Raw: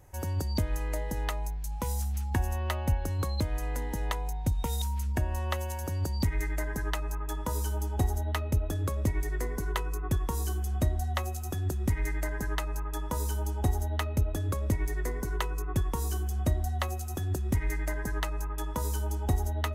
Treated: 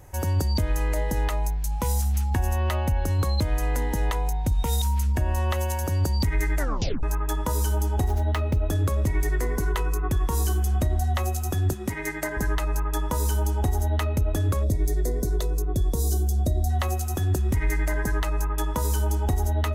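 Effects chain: 8.08–8.57 s: median filter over 5 samples; 11.73–12.37 s: high-pass 170 Hz 12 dB/octave; 14.64–16.70 s: time-frequency box 750–3400 Hz -14 dB; peak limiter -23.5 dBFS, peak gain reduction 7 dB; 6.59 s: tape stop 0.44 s; trim +8 dB

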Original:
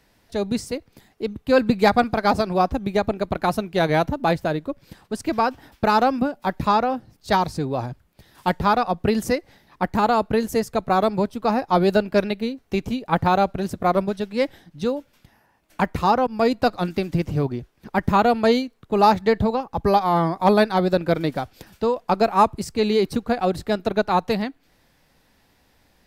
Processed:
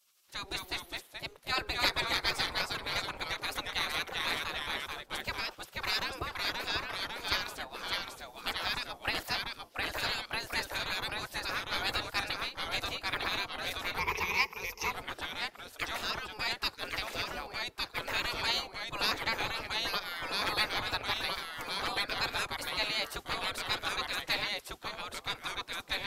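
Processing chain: spectral gate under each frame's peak -20 dB weak; ever faster or slower copies 171 ms, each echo -1 st, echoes 2; 13.98–14.91 s: rippled EQ curve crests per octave 0.8, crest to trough 17 dB

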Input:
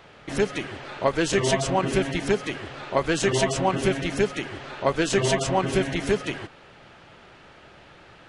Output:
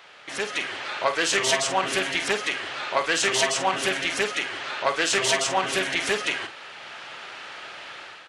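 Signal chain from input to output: tilt EQ +3.5 dB/octave; in parallel at -3 dB: compression, threshold -36 dBFS, peak gain reduction 18.5 dB; on the sum: overdrive pedal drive 8 dB, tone 3 kHz, clips at -5 dBFS; level rider gain up to 9.5 dB; doubling 48 ms -10 dB; loudspeaker Doppler distortion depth 0.15 ms; trim -7.5 dB

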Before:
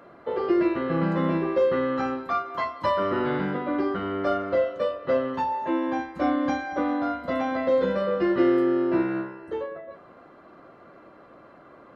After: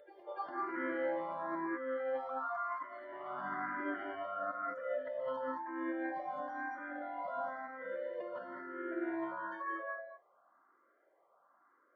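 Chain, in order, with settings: spectral noise reduction 25 dB; high-pass 700 Hz 12 dB/octave; compressor with a negative ratio -41 dBFS, ratio -1; Savitzky-Golay filter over 41 samples; reverse echo 291 ms -14.5 dB; gated-style reverb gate 240 ms rising, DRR 0.5 dB; barber-pole phaser +1 Hz; trim +1 dB

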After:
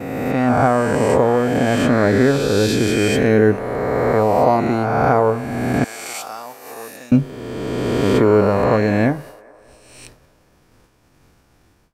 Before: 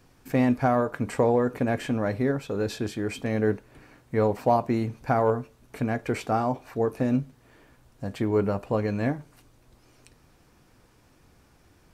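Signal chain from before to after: reverse spectral sustain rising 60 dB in 2.29 s; 5.84–7.12 s: differentiator; level rider gain up to 14 dB; expander -31 dBFS; feedback echo behind a band-pass 207 ms, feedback 61%, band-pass 900 Hz, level -21.5 dB; trim -1 dB

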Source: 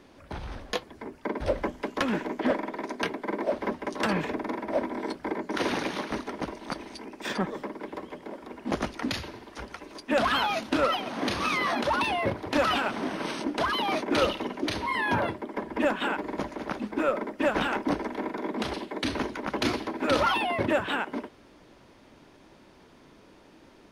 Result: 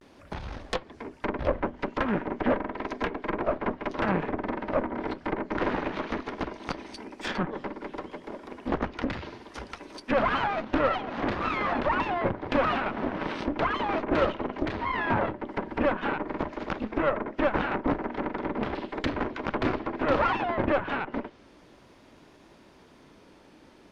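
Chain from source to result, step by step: vibrato 0.37 Hz 50 cents; Chebyshev shaper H 6 -14 dB, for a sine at -12 dBFS; low-pass that closes with the level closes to 1.8 kHz, closed at -25 dBFS

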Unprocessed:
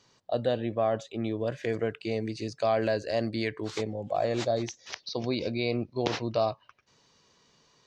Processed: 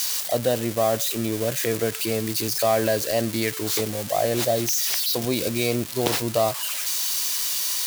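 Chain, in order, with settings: zero-crossing glitches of -22 dBFS; trim +5 dB

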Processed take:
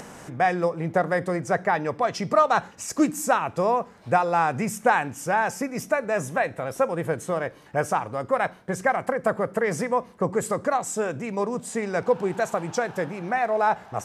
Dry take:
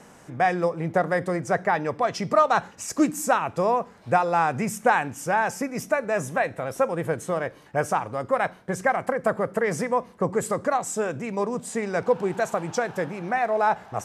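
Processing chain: upward compressor, threshold -34 dBFS

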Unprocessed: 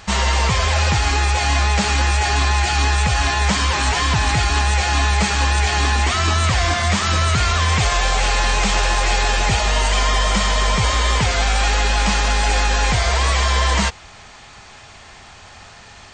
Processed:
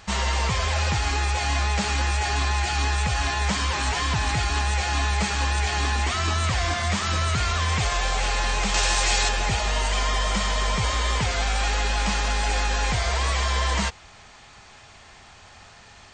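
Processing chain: 8.74–9.29 s: treble shelf 3.1 kHz +10 dB; trim -6.5 dB

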